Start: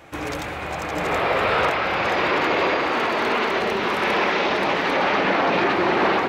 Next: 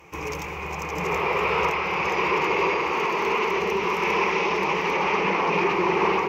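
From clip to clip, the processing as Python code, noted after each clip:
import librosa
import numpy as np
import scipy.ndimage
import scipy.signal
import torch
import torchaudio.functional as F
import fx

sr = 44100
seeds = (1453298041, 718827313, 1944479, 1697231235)

y = fx.ripple_eq(x, sr, per_octave=0.78, db=13)
y = y * 10.0 ** (-5.0 / 20.0)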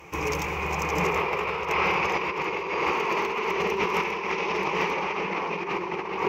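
y = fx.over_compress(x, sr, threshold_db=-26.0, ratio=-0.5)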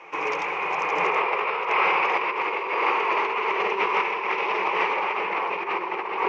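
y = fx.bandpass_edges(x, sr, low_hz=520.0, high_hz=2800.0)
y = y * 10.0 ** (4.5 / 20.0)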